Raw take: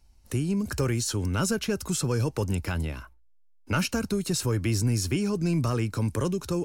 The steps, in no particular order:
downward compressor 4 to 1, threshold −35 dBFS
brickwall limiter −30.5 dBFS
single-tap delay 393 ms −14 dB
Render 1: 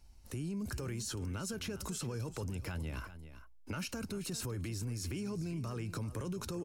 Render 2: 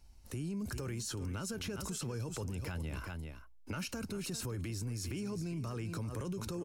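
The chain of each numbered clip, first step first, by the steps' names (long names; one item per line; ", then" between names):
brickwall limiter, then single-tap delay, then downward compressor
single-tap delay, then brickwall limiter, then downward compressor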